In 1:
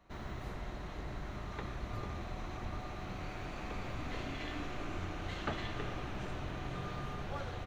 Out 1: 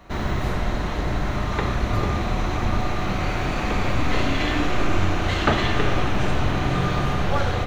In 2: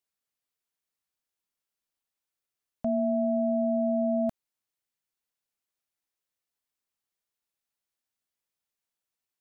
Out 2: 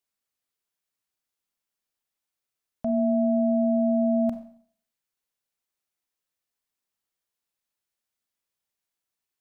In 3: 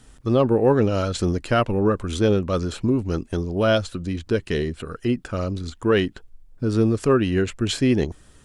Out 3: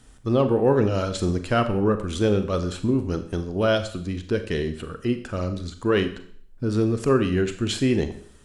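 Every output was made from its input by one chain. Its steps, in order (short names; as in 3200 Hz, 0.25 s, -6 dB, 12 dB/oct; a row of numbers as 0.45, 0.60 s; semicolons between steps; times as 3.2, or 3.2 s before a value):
Schroeder reverb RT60 0.56 s, combs from 30 ms, DRR 8.5 dB; match loudness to -24 LUFS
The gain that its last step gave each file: +17.5, +1.0, -2.0 dB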